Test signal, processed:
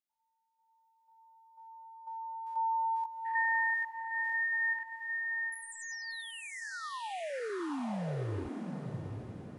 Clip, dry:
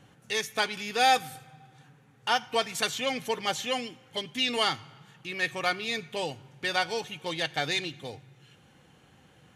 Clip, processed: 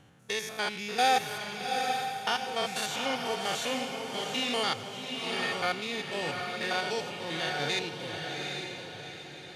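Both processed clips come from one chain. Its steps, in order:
spectrum averaged block by block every 100 ms
feedback delay with all-pass diffusion 790 ms, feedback 43%, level −3.5 dB

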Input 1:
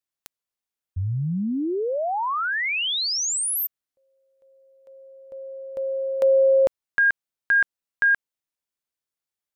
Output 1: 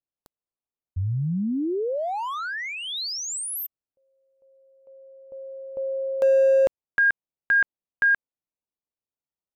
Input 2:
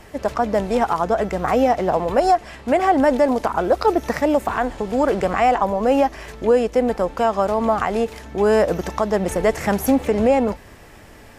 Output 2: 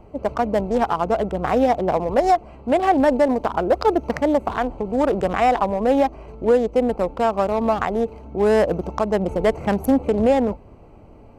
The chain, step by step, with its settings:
adaptive Wiener filter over 25 samples

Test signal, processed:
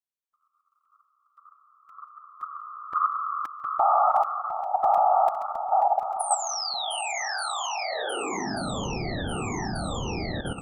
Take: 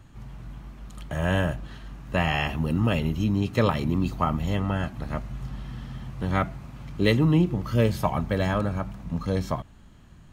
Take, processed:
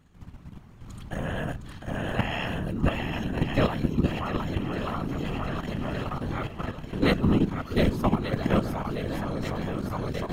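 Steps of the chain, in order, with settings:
feedback echo with a long and a short gap by turns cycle 1,185 ms, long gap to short 1.5 to 1, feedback 54%, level −3.5 dB
random phases in short frames
output level in coarse steps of 10 dB

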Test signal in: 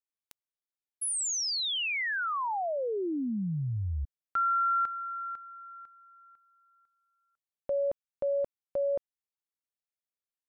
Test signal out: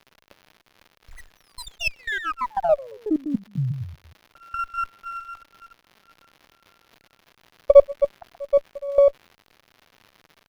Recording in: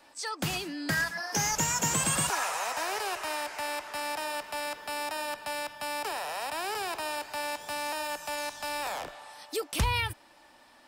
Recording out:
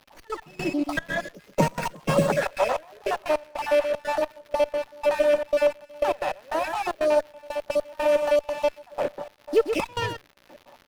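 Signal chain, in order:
time-frequency cells dropped at random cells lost 44%
high-pass filter 150 Hz 24 dB per octave
tilt shelving filter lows +8.5 dB, about 1,200 Hz
hollow resonant body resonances 570/2,600 Hz, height 13 dB
on a send: single-tap delay 128 ms −8 dB
on the sum: gate pattern ".x.x..xxxx.xx.." 152 BPM −24 dB
surface crackle 320 per second −49 dBFS
dynamic equaliser 2,200 Hz, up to +4 dB, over −47 dBFS, Q 1.1
windowed peak hold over 5 samples
level +5.5 dB

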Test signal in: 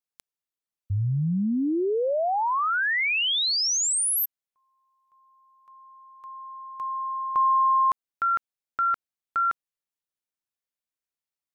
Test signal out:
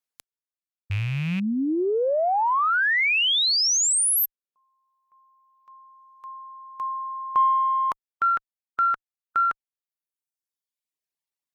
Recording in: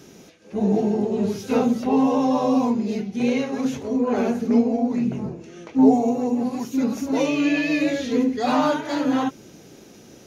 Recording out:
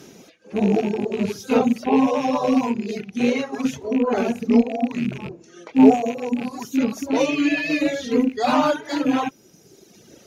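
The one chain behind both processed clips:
loose part that buzzes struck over −28 dBFS, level −25 dBFS
low-shelf EQ 82 Hz −8.5 dB
harmonic generator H 4 −40 dB, 7 −36 dB, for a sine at −4 dBFS
reverb reduction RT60 1.5 s
level +4 dB

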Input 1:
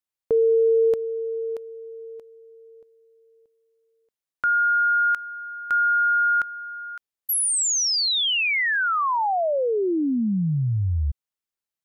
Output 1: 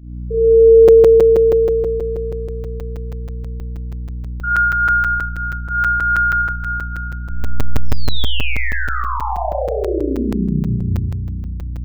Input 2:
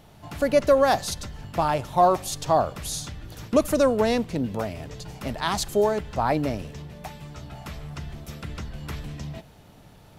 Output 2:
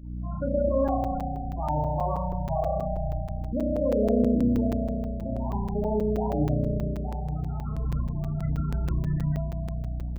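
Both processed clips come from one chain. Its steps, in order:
stylus tracing distortion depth 0.023 ms
elliptic low-pass filter 3,700 Hz, stop band 70 dB
brickwall limiter −20.5 dBFS
speech leveller within 4 dB 2 s
mains hum 60 Hz, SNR 11 dB
on a send: echo with a time of its own for lows and highs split 1,300 Hz, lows 94 ms, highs 301 ms, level −12.5 dB
on the sum: spring reverb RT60 2.7 s, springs 33 ms, chirp 45 ms, DRR −5.5 dB
spectral peaks only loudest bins 16
regular buffer underruns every 0.16 s, samples 256, zero, from 0:00.88
level −2 dB

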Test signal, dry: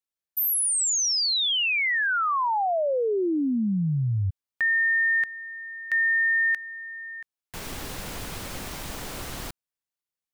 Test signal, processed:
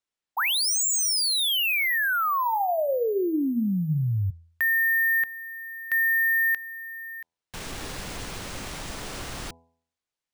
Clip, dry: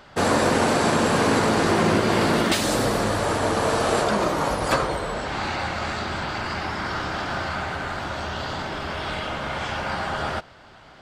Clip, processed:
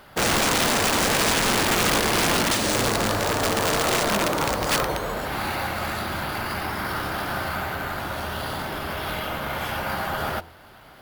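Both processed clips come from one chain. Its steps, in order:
bad sample-rate conversion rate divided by 3×, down none, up hold
hum removal 83.27 Hz, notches 12
wrap-around overflow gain 15 dB

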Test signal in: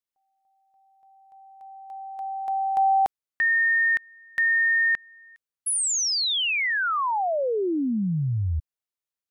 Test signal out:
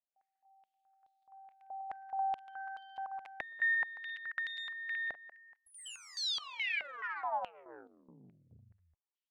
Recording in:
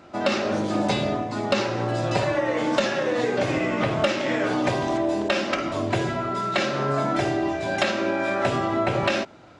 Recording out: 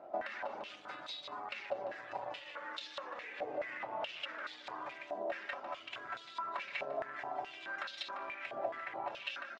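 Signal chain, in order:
reverb reduction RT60 1 s
on a send: multi-tap delay 117/125/192/199/344 ms −19.5/−15/−4.5/−3/−7.5 dB
on the sum: harmonic generator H 8 −24 dB, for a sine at −6.5 dBFS
downward compressor 6 to 1, threshold −33 dBFS
band-pass on a step sequencer 4.7 Hz 670–3,800 Hz
level +4 dB

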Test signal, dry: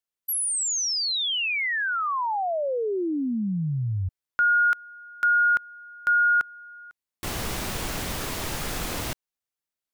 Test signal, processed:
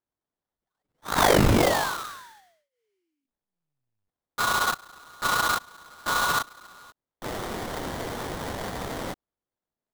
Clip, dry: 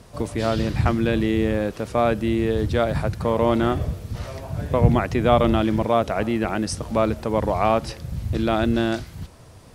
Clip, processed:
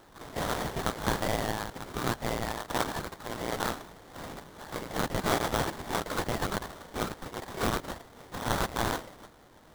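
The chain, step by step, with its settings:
inverse Chebyshev high-pass filter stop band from 580 Hz, stop band 60 dB
linear-prediction vocoder at 8 kHz pitch kept
sample-rate reduction 2,600 Hz, jitter 20%
level +8 dB

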